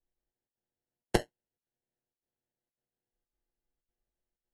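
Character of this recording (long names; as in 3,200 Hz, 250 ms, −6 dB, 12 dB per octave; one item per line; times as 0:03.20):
a buzz of ramps at a fixed pitch in blocks of 16 samples
chopped level 1.8 Hz, depth 65%, duty 85%
aliases and images of a low sample rate 1,200 Hz, jitter 0%
AAC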